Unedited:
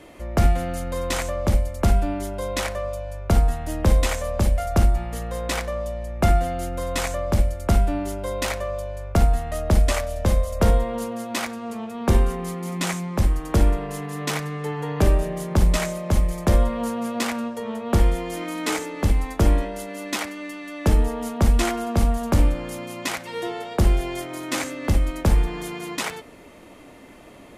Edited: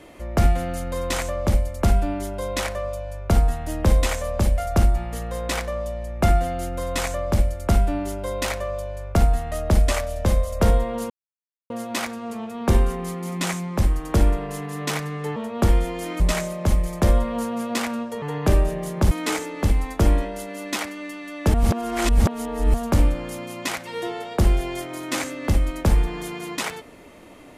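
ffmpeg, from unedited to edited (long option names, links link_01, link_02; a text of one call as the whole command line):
ffmpeg -i in.wav -filter_complex "[0:a]asplit=8[link_01][link_02][link_03][link_04][link_05][link_06][link_07][link_08];[link_01]atrim=end=11.1,asetpts=PTS-STARTPTS,afade=type=out:start_time=11.096:duration=0.004:curve=hsin,apad=pad_dur=0.6[link_09];[link_02]atrim=start=11.1:end=14.762,asetpts=PTS-STARTPTS,afade=type=in:duration=0.004:curve=hsin[link_10];[link_03]atrim=start=17.668:end=18.512[link_11];[link_04]atrim=start=15.648:end=17.672[link_12];[link_05]atrim=start=14.758:end=15.652[link_13];[link_06]atrim=start=18.508:end=20.942[link_14];[link_07]atrim=start=20.938:end=22.142,asetpts=PTS-STARTPTS,areverse[link_15];[link_08]atrim=start=22.138[link_16];[link_09][link_10]concat=n=2:v=0:a=1[link_17];[link_17][link_11]acrossfade=duration=0.004:curve1=hsin:curve2=hsin[link_18];[link_18][link_12]acrossfade=duration=0.004:curve1=hsin:curve2=hsin[link_19];[link_19][link_13]acrossfade=duration=0.004:curve1=hsin:curve2=hsin[link_20];[link_20][link_14]acrossfade=duration=0.004:curve1=hsin:curve2=hsin[link_21];[link_21][link_15]acrossfade=duration=0.004:curve1=hsin:curve2=hsin[link_22];[link_22][link_16]acrossfade=duration=0.004:curve1=hsin:curve2=hsin" out.wav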